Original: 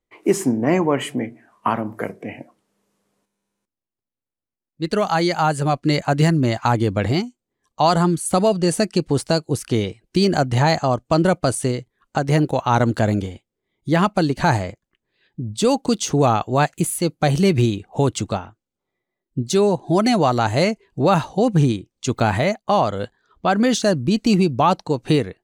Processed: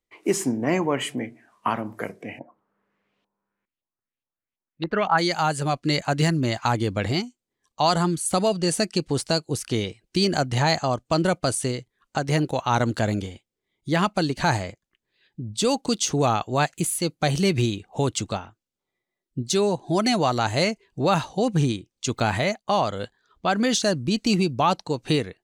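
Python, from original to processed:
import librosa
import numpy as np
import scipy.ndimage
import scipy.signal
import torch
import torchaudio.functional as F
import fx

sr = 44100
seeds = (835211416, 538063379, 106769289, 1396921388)

y = fx.high_shelf(x, sr, hz=2400.0, db=10.0)
y = fx.filter_lfo_lowpass(y, sr, shape='saw_up', hz=fx.line((2.38, 0.85), (5.17, 4.9)), low_hz=820.0, high_hz=3300.0, q=2.3, at=(2.38, 5.17), fade=0.02)
y = fx.high_shelf(y, sr, hz=9100.0, db=-9.5)
y = y * librosa.db_to_amplitude(-5.5)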